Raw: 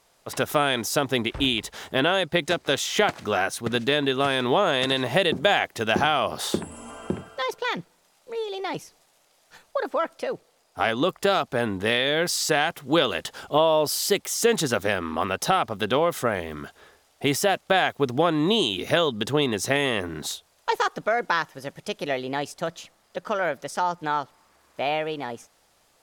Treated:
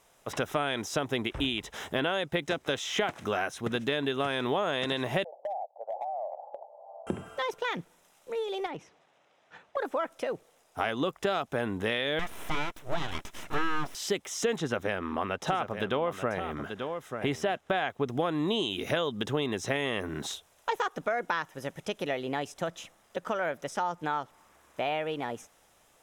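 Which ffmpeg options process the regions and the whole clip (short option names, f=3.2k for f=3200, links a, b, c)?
-filter_complex "[0:a]asettb=1/sr,asplit=3[a][b][c];[a]atrim=end=5.244[d];[b]atrim=start=5.24:end=7.07,asetpts=PTS-STARTPTS,afade=t=in:d=0.004:c=qsin,afade=t=out:st=1.826:d=0.004:c=qsin,asuperpass=centerf=680:order=8:qfactor=2.2,acompressor=threshold=-33dB:ratio=3:attack=3.2:release=140:knee=1:detection=peak,asoftclip=type=hard:threshold=-27dB[e];[c]atrim=start=7.066[f];[d][e]acrossfade=d=0.004:c1=hsin:c2=qsin[g];[g][f]acrossfade=d=0.004:c1=qsin:c2=hsin,asettb=1/sr,asplit=3[h][i][j];[h]atrim=end=8.664[k];[i]atrim=start=8.66:end=9.77,asetpts=PTS-STARTPTS,afade=t=in:d=0.004:c=qsin,afade=t=out:st=1.106:d=0.004:c=qsin,highpass=100,lowpass=3.1k,acompressor=threshold=-33dB:ratio=5:attack=3.2:release=140:knee=1:detection=peak,asoftclip=type=hard:threshold=-29.5dB[l];[j]atrim=start=9.766[m];[k][l]acrossfade=d=0.004:c1=hsin:c2=qsin[n];[n][m]acrossfade=d=0.004:c1=qsin:c2=hsin,asettb=1/sr,asplit=3[o][p][q];[o]atrim=end=12.194[r];[p]atrim=start=12.19:end=13.95,asetpts=PTS-STARTPTS,afade=t=in:d=0.004:c=qsin,afade=t=out:st=1.756:d=0.004:c=qsin,acrossover=split=2800[s][t];[t]acompressor=threshold=-39dB:ratio=4:attack=1:release=60[u];[s][u]amix=inputs=2:normalize=0,aecho=1:1:3:0.59,atrim=end_sample=77616,aeval=exprs='abs(val(0))':c=same[v];[q]atrim=start=13.946[w];[r][v]acrossfade=d=0.004:c1=hsin:c2=qsin[x];[x][w]acrossfade=d=0.004:c1=qsin:c2=hsin,asettb=1/sr,asplit=3[y][z][aa];[y]atrim=end=14.584[ab];[z]atrim=start=14.58:end=18.08,asetpts=PTS-STARTPTS,afade=t=in:d=0.004:c=qsin,afade=t=out:st=3.496:d=0.004:c=qsin,highshelf=f=6.1k:g=-11.5,aecho=1:1:886:0.266,atrim=end_sample=154350[ac];[aa]atrim=start=18.076[ad];[ab][ac]acrossfade=d=0.004:c1=hsin:c2=qsin[ae];[ae][ad]acrossfade=d=0.004:c1=qsin:c2=hsin,acrossover=split=6300[af][ag];[ag]acompressor=threshold=-47dB:ratio=4:attack=1:release=60[ah];[af][ah]amix=inputs=2:normalize=0,equalizer=f=4.5k:t=o:w=0.24:g=-12,acompressor=threshold=-31dB:ratio=2"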